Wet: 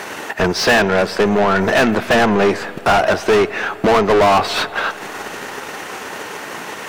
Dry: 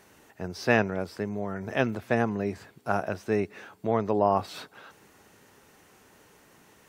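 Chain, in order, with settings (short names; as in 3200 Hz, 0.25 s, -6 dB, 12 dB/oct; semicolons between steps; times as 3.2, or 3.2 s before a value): transient shaper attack +6 dB, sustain -7 dB; overdrive pedal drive 37 dB, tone 2900 Hz, clips at -7 dBFS; spring tank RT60 3.5 s, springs 42/46 ms, chirp 55 ms, DRR 16 dB; gain +2 dB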